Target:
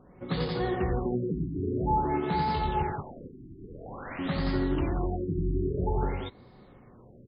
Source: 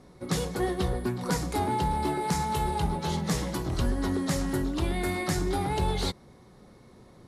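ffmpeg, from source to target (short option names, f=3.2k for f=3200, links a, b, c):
-filter_complex "[0:a]asettb=1/sr,asplit=3[a][b][c];[a]atrim=end=2.834[d];[b]atrim=start=2.83:end=4.19,asetpts=PTS-STARTPTS,afade=t=in:d=0.004:c=qsin,afade=t=out:st=1.356:d=0.004:c=qsin,aeval=exprs='(mod(39.8*val(0)+1,2)-1)/39.8':c=same[e];[c]atrim=start=4.186[f];[d][e]acrossfade=d=0.004:c1=hsin:c2=qsin[g];[g][f]acrossfade=d=0.004:c1=qsin:c2=hsin,asplit=2[h][i];[i]aecho=0:1:66|90|175|183:0.299|0.631|0.501|0.422[j];[h][j]amix=inputs=2:normalize=0,afftfilt=real='re*lt(b*sr/1024,380*pow(5200/380,0.5+0.5*sin(2*PI*0.5*pts/sr)))':imag='im*lt(b*sr/1024,380*pow(5200/380,0.5+0.5*sin(2*PI*0.5*pts/sr)))':win_size=1024:overlap=0.75,volume=-2.5dB"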